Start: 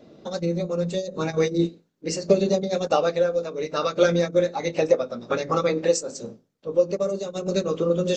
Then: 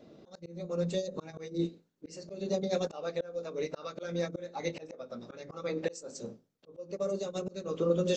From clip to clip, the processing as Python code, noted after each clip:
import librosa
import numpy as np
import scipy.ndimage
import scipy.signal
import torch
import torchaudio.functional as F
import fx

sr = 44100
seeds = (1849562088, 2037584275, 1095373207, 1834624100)

y = fx.auto_swell(x, sr, attack_ms=374.0)
y = F.gain(torch.from_numpy(y), -5.5).numpy()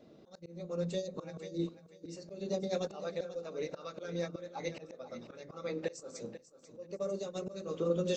y = fx.echo_feedback(x, sr, ms=491, feedback_pct=23, wet_db=-13.5)
y = F.gain(torch.from_numpy(y), -3.5).numpy()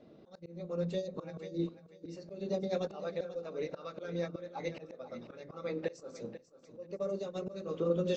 y = fx.air_absorb(x, sr, metres=130.0)
y = F.gain(torch.from_numpy(y), 1.0).numpy()